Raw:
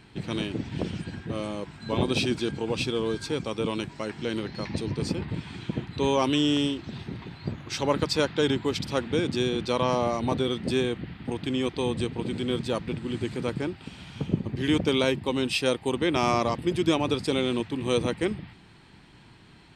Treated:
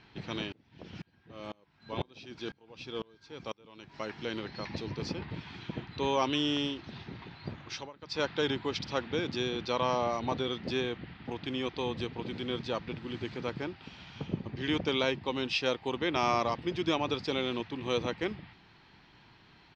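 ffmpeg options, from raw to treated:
ffmpeg -i in.wav -filter_complex "[0:a]asettb=1/sr,asplit=3[link_01][link_02][link_03];[link_01]atrim=end=0.524[link_04];[link_02]atrim=start=0.52:end=3.94,asetpts=PTS-STARTPTS,afade=type=in:duration=0.004:curve=qsin,afade=type=out:start_time=3.416:duration=0.004:curve=qsin,aeval=exprs='val(0)*pow(10,-30*if(lt(mod(-2*n/s,1),2*abs(-2)/1000),1-mod(-2*n/s,1)/(2*abs(-2)/1000),(mod(-2*n/s,1)-2*abs(-2)/1000)/(1-2*abs(-2)/1000))/20)':channel_layout=same[link_05];[link_03]atrim=start=3.936[link_06];[link_04][link_05]acrossfade=duration=0.004:curve1=hsin:curve2=qsin[link_07];[link_07][link_06]acrossfade=duration=0.004:curve1=qsin:curve2=hsin,asplit=3[link_08][link_09][link_10];[link_08]atrim=end=7.91,asetpts=PTS-STARTPTS,afade=type=out:start_time=7.66:duration=0.25:silence=0.0707946[link_11];[link_09]atrim=start=7.91:end=8.01,asetpts=PTS-STARTPTS,volume=-23dB[link_12];[link_10]atrim=start=8.01,asetpts=PTS-STARTPTS,afade=type=in:duration=0.25:silence=0.0707946[link_13];[link_11][link_12][link_13]concat=n=3:v=0:a=1,firequalizer=gain_entry='entry(230,0);entry(800,6);entry(5800,4);entry(8800,-23)':delay=0.05:min_phase=1,volume=-8.5dB" out.wav

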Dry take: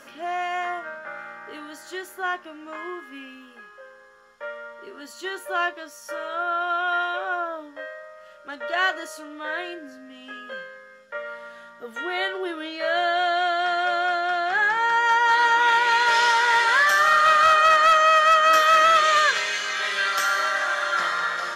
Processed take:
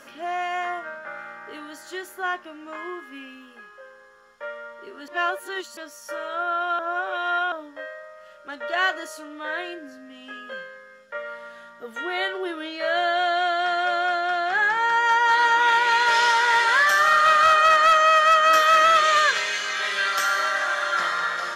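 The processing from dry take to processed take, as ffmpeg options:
ffmpeg -i in.wav -filter_complex "[0:a]asplit=5[link_01][link_02][link_03][link_04][link_05];[link_01]atrim=end=5.082[link_06];[link_02]atrim=start=5.078:end=5.772,asetpts=PTS-STARTPTS,areverse[link_07];[link_03]atrim=start=5.768:end=6.792[link_08];[link_04]atrim=start=6.788:end=7.522,asetpts=PTS-STARTPTS,areverse[link_09];[link_05]atrim=start=7.518[link_10];[link_06][link_07]acrossfade=duration=0.004:curve1=hsin:curve2=hsin[link_11];[link_11][link_08]acrossfade=duration=0.004:curve1=hsin:curve2=hsin[link_12];[link_12][link_09]acrossfade=duration=0.004:curve1=hsin:curve2=hsin[link_13];[link_13][link_10]acrossfade=duration=0.004:curve1=hsin:curve2=hsin" out.wav

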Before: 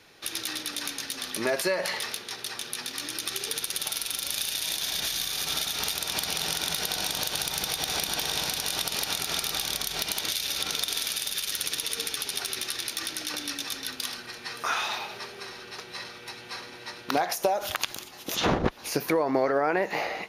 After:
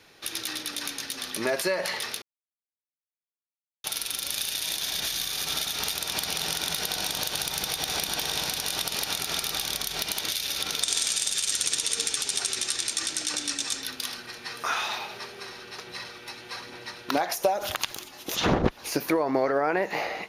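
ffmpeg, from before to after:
ffmpeg -i in.wav -filter_complex "[0:a]asettb=1/sr,asplit=3[link_01][link_02][link_03];[link_01]atrim=end=10.834[link_04];[link_02]atrim=start=10.83:end=13.83,asetpts=PTS-STARTPTS,afade=type=in:duration=0.004:curve=qsin,afade=type=out:start_time=2.996:duration=0.004:curve=qsin,lowpass=frequency=7900:width_type=q:width=8.3[link_05];[link_03]atrim=start=13.826[link_06];[link_04][link_05]acrossfade=duration=0.004:curve1=hsin:curve2=qsin[link_07];[link_07][link_06]acrossfade=duration=0.004:curve1=qsin:curve2=hsin,asettb=1/sr,asplit=3[link_08][link_09][link_10];[link_08]atrim=end=15.864[link_11];[link_09]atrim=start=15.86:end=19.2,asetpts=PTS-STARTPTS,afade=type=in:duration=0.004:curve=qsin,afade=type=out:start_time=3.336:duration=0.004:curve=qsin,aphaser=in_gain=1:out_gain=1:delay=3.5:decay=0.28:speed=1.1:type=sinusoidal[link_12];[link_10]atrim=start=19.196[link_13];[link_11][link_12]acrossfade=duration=0.004:curve1=hsin:curve2=qsin[link_14];[link_14][link_13]acrossfade=duration=0.004:curve1=qsin:curve2=hsin,asplit=3[link_15][link_16][link_17];[link_15]atrim=end=2.22,asetpts=PTS-STARTPTS,afade=type=out:start_time=2.216:duration=0.004:curve=hsin[link_18];[link_16]atrim=start=2.22:end=3.84,asetpts=PTS-STARTPTS,volume=0[link_19];[link_17]atrim=start=3.84,asetpts=PTS-STARTPTS,afade=type=in:duration=0.004:curve=hsin[link_20];[link_18][link_19][link_20]concat=n=3:v=0:a=1" out.wav

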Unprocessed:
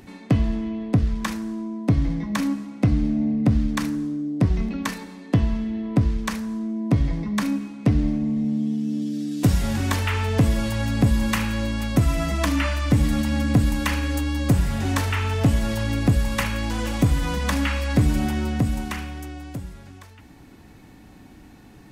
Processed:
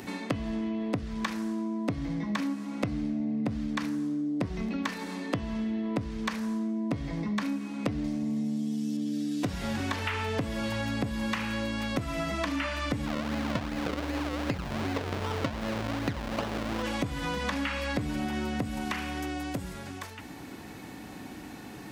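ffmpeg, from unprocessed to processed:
ffmpeg -i in.wav -filter_complex "[0:a]asettb=1/sr,asplit=3[link_01][link_02][link_03];[link_01]atrim=end=8.044[link_04];[link_02]atrim=start=8.04:end=8.97,asetpts=PTS-STARTPTS,afade=type=in:duration=0.004:curve=qsin,afade=type=out:start_time=0.926:duration=0.004:curve=qsin,bass=frequency=250:gain=0,treble=frequency=4000:gain=10[link_05];[link_03]atrim=start=8.966[link_06];[link_04][link_05]acrossfade=duration=0.004:curve1=hsin:curve2=qsin[link_07];[link_07][link_06]acrossfade=duration=0.004:curve1=qsin:curve2=hsin,asplit=3[link_08][link_09][link_10];[link_08]afade=type=out:start_time=13.05:duration=0.02[link_11];[link_09]acrusher=samples=37:mix=1:aa=0.000001:lfo=1:lforange=37:lforate=2.6,afade=type=in:start_time=13.05:duration=0.02,afade=type=out:start_time=16.82:duration=0.02[link_12];[link_10]afade=type=in:start_time=16.82:duration=0.02[link_13];[link_11][link_12][link_13]amix=inputs=3:normalize=0,acrossover=split=5400[link_14][link_15];[link_15]acompressor=threshold=-49dB:ratio=4:attack=1:release=60[link_16];[link_14][link_16]amix=inputs=2:normalize=0,highpass=frequency=240:poles=1,acompressor=threshold=-37dB:ratio=5,volume=7.5dB" out.wav

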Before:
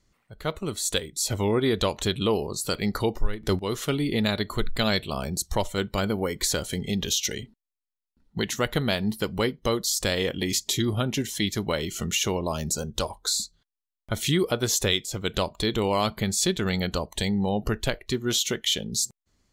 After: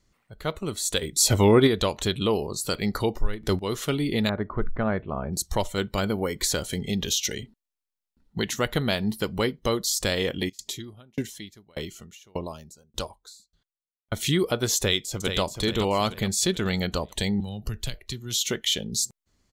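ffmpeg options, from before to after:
ffmpeg -i in.wav -filter_complex "[0:a]asplit=3[link_01][link_02][link_03];[link_01]afade=type=out:start_time=1.01:duration=0.02[link_04];[link_02]acontrast=83,afade=type=in:start_time=1.01:duration=0.02,afade=type=out:start_time=1.66:duration=0.02[link_05];[link_03]afade=type=in:start_time=1.66:duration=0.02[link_06];[link_04][link_05][link_06]amix=inputs=3:normalize=0,asettb=1/sr,asplit=3[link_07][link_08][link_09];[link_07]atrim=end=4.294[link_10];[link_08]atrim=start=4.29:end=5.33,asetpts=PTS-STARTPTS,afade=type=in:duration=0.004:curve=qsin,afade=type=out:start_time=1.036:duration=0.004:curve=qsin,lowpass=frequency=1600:width=0.5412,lowpass=frequency=1600:width=1.3066[link_11];[link_09]atrim=start=5.326[link_12];[link_10][link_11]acrossfade=duration=0.004:curve1=hsin:curve2=qsin[link_13];[link_13][link_12]acrossfade=duration=0.004:curve1=qsin:curve2=hsin,asplit=3[link_14][link_15][link_16];[link_14]afade=type=out:start_time=10.48:duration=0.02[link_17];[link_15]aeval=exprs='val(0)*pow(10,-34*if(lt(mod(1.7*n/s,1),2*abs(1.7)/1000),1-mod(1.7*n/s,1)/(2*abs(1.7)/1000),(mod(1.7*n/s,1)-2*abs(1.7)/1000)/(1-2*abs(1.7)/1000))/20)':channel_layout=same,afade=type=in:start_time=10.48:duration=0.02,afade=type=out:start_time=14.19:duration=0.02[link_18];[link_16]afade=type=in:start_time=14.19:duration=0.02[link_19];[link_17][link_18][link_19]amix=inputs=3:normalize=0,asplit=2[link_20][link_21];[link_21]afade=type=in:start_time=14.77:duration=0.01,afade=type=out:start_time=15.41:duration=0.01,aecho=0:1:430|860|1290|1720|2150:0.446684|0.178673|0.0714694|0.0285877|0.0114351[link_22];[link_20][link_22]amix=inputs=2:normalize=0,asettb=1/sr,asplit=3[link_23][link_24][link_25];[link_23]atrim=end=17.404[link_26];[link_24]atrim=start=17.4:end=18.41,asetpts=PTS-STARTPTS,afade=type=in:duration=0.004:curve=qsin,afade=type=out:start_time=1.006:duration=0.004:curve=qsin,acrossover=split=150|3000[link_27][link_28][link_29];[link_28]acompressor=threshold=-47dB:ratio=2.5:attack=3.2:release=140:knee=2.83:detection=peak[link_30];[link_27][link_30][link_29]amix=inputs=3:normalize=0[link_31];[link_25]atrim=start=18.406[link_32];[link_26][link_31]acrossfade=duration=0.004:curve1=hsin:curve2=qsin[link_33];[link_33][link_32]acrossfade=duration=0.004:curve1=qsin:curve2=hsin" out.wav

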